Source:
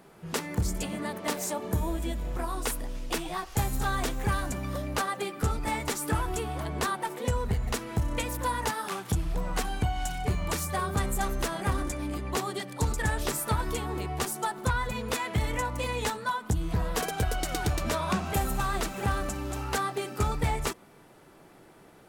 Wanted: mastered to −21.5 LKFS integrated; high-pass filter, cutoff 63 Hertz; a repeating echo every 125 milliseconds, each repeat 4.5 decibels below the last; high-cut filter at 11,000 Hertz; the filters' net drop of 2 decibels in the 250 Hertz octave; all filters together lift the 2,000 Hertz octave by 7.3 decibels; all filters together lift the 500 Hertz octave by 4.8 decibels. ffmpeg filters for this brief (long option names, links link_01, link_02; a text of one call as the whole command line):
ffmpeg -i in.wav -af "highpass=63,lowpass=11000,equalizer=frequency=250:width_type=o:gain=-5.5,equalizer=frequency=500:width_type=o:gain=7,equalizer=frequency=2000:width_type=o:gain=9,aecho=1:1:125|250|375|500|625|750|875|1000|1125:0.596|0.357|0.214|0.129|0.0772|0.0463|0.0278|0.0167|0.01,volume=5dB" out.wav